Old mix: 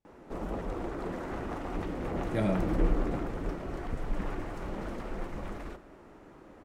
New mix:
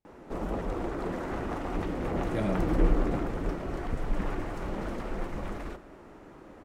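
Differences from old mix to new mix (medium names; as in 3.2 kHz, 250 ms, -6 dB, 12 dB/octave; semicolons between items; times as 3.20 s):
speech: send -6.0 dB; background +3.0 dB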